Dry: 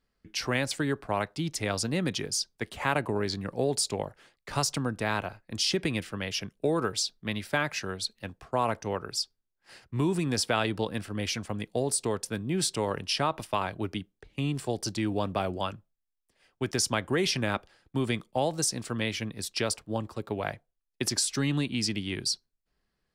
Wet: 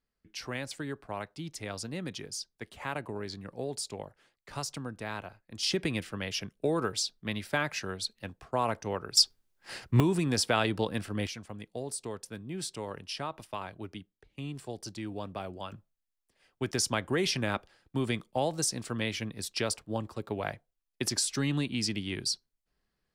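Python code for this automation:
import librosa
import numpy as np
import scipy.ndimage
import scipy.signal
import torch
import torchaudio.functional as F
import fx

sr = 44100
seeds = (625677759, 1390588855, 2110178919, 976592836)

y = fx.gain(x, sr, db=fx.steps((0.0, -8.5), (5.63, -2.0), (9.17, 9.0), (10.0, 0.0), (11.27, -9.0), (15.72, -2.0)))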